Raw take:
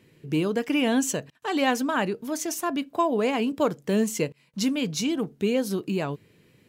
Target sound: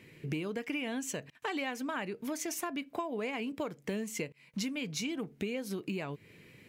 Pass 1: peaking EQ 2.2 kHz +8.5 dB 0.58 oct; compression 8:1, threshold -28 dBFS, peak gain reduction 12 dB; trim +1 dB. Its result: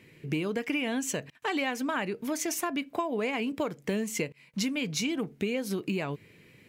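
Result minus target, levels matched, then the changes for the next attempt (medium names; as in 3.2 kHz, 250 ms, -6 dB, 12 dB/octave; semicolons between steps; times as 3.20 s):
compression: peak gain reduction -5.5 dB
change: compression 8:1, threshold -34.5 dBFS, peak gain reduction 17.5 dB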